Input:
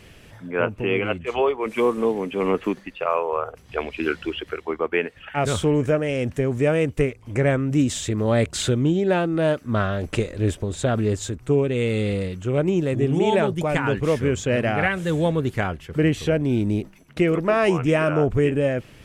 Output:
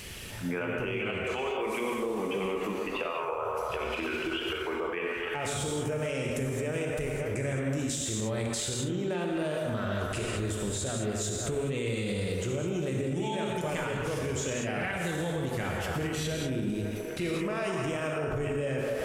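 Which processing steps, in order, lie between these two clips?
high-shelf EQ 3,500 Hz +12 dB
on a send: delay with a band-pass on its return 268 ms, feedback 50%, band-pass 890 Hz, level −9 dB
on the sum: downward compressor, threshold −28 dBFS, peak gain reduction 13 dB
reverb whose tail is shaped and stops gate 240 ms flat, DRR 0 dB
brickwall limiter −23 dBFS, peak gain reduction 9 dB
one half of a high-frequency compander encoder only

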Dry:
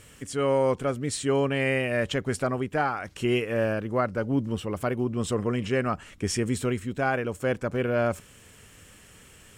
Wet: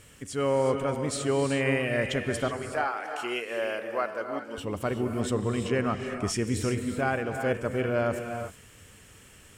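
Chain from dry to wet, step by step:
0:02.48–0:04.58: high-pass filter 520 Hz 12 dB per octave
reverb whose tail is shaped and stops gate 400 ms rising, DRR 5.5 dB
level −2 dB

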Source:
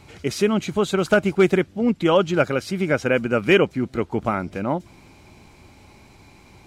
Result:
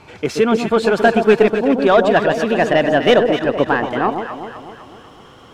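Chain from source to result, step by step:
gliding playback speed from 105% → 136%
mid-hump overdrive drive 12 dB, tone 1,400 Hz, clips at −6 dBFS
delay that swaps between a low-pass and a high-pass 126 ms, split 950 Hz, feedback 70%, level −5 dB
level +4 dB

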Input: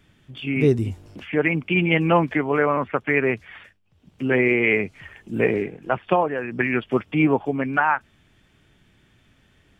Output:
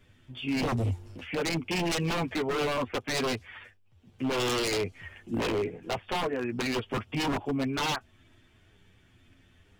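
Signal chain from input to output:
multi-voice chorus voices 6, 0.25 Hz, delay 10 ms, depth 2.2 ms
wave folding −22.5 dBFS
dynamic equaliser 1,700 Hz, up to −5 dB, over −43 dBFS, Q 1.3

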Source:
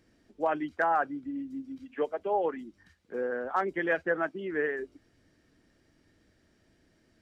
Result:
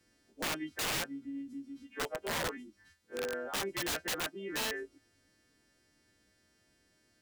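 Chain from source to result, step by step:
every partial snapped to a pitch grid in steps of 2 semitones
wrap-around overflow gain 24 dB
level −5 dB

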